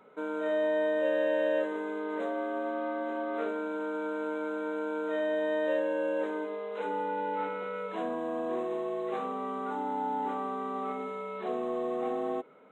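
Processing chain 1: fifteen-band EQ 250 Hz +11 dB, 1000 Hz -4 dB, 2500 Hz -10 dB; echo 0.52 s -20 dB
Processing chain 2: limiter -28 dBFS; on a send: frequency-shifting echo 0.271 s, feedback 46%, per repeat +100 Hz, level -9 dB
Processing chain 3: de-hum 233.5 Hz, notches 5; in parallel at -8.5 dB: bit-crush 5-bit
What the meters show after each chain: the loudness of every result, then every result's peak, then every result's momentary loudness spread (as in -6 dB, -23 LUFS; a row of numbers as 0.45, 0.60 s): -31.0, -35.5, -30.0 LUFS; -17.5, -24.5, -15.0 dBFS; 6, 2, 9 LU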